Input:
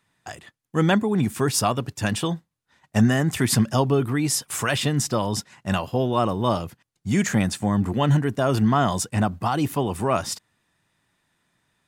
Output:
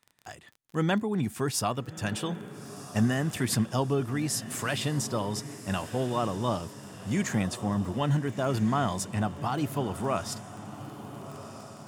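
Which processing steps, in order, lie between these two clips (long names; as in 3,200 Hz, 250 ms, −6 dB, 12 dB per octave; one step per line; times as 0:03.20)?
surface crackle 11 per second −30 dBFS
feedback delay with all-pass diffusion 1,345 ms, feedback 48%, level −13 dB
level −7 dB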